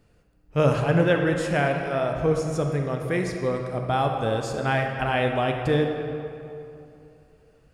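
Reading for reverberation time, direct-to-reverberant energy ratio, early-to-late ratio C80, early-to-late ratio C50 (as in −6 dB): 2.8 s, 3.0 dB, 5.0 dB, 4.0 dB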